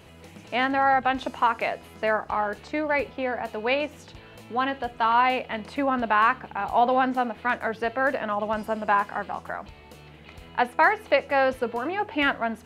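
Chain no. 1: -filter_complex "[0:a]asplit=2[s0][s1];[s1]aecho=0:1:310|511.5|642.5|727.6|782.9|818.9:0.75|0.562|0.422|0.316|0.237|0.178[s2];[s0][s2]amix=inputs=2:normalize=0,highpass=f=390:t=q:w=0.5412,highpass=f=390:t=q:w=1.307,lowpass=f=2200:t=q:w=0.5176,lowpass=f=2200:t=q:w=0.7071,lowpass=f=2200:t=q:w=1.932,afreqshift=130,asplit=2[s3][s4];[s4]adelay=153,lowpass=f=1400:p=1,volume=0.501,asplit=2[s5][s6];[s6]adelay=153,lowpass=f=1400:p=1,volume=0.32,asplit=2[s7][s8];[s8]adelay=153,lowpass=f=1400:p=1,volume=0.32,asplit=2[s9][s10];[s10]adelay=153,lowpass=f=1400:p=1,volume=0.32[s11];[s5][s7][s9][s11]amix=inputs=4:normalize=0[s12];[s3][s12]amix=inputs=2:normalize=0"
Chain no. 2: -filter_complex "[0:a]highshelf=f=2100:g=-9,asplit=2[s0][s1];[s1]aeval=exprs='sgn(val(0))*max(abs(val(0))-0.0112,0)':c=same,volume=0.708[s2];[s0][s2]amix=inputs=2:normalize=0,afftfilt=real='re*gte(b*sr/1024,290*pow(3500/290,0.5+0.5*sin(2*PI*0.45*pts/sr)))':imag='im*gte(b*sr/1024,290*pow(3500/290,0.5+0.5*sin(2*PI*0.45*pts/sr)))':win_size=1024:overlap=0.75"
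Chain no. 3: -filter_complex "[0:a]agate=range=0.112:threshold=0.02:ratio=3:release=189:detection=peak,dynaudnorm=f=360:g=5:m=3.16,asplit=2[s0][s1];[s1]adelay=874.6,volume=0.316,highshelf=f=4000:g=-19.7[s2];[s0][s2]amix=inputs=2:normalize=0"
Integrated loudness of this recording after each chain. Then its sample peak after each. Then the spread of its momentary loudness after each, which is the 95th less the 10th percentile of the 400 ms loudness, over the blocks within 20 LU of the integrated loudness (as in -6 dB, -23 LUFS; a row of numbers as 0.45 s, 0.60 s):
-21.5 LUFS, -25.0 LUFS, -18.0 LUFS; -6.0 dBFS, -5.5 dBFS, -1.5 dBFS; 8 LU, 21 LU, 11 LU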